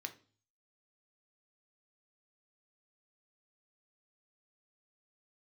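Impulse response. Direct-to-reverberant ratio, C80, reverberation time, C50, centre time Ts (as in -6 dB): 6.0 dB, 20.5 dB, 0.40 s, 15.0 dB, 7 ms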